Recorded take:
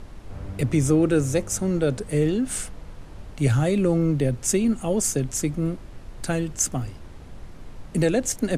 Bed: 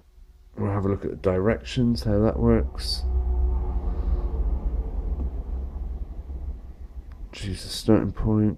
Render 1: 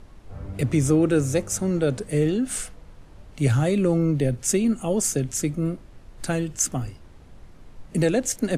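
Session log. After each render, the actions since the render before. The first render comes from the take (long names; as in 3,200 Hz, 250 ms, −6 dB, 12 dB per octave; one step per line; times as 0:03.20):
noise reduction from a noise print 6 dB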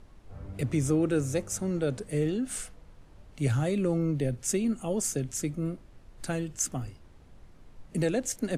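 level −6.5 dB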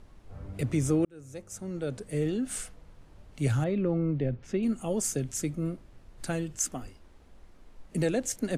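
0:01.05–0:02.39: fade in
0:03.64–0:04.63: high-frequency loss of the air 300 metres
0:06.61–0:07.96: parametric band 120 Hz −12.5 dB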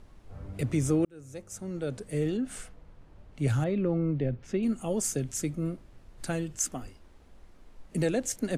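0:02.37–0:03.48: high-shelf EQ 3,800 Hz −9 dB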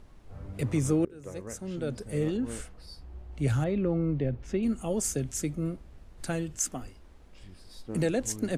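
mix in bed −20.5 dB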